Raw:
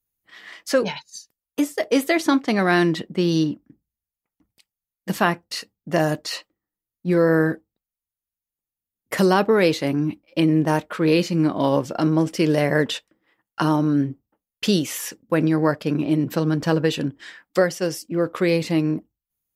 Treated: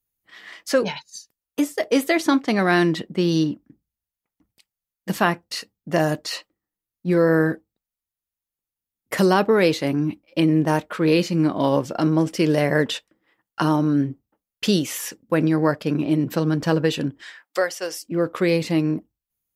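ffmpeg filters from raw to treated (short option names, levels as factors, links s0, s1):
-filter_complex "[0:a]asettb=1/sr,asplit=3[s0][s1][s2];[s0]atrim=end=17.224[s3];[s1]atrim=start=17.22:end=18.06,asetpts=PTS-STARTPTS,afade=t=in:d=0.004:c=qsin,afade=t=out:st=0.836:d=0.004:c=qsin,highpass=560[s4];[s2]atrim=start=18.056[s5];[s3][s4]acrossfade=d=0.004:c1=hsin:c2=qsin[s6];[s6][s5]acrossfade=d=0.004:c1=qsin:c2=hsin"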